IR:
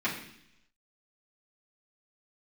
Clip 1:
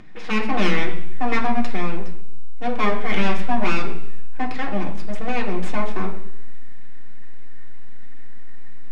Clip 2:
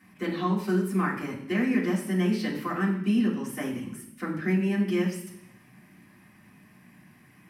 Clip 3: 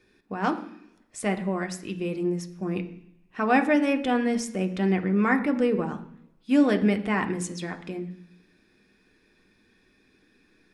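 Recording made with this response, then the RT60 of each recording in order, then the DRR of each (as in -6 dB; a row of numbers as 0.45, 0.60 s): 2; 0.70, 0.70, 0.70 s; -1.0, -9.5, 5.0 dB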